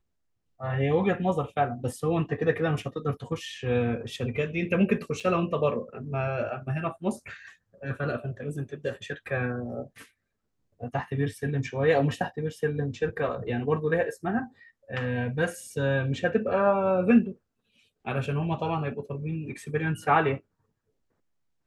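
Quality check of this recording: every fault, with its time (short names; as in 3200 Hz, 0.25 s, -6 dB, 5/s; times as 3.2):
5.2–5.21 gap 5.3 ms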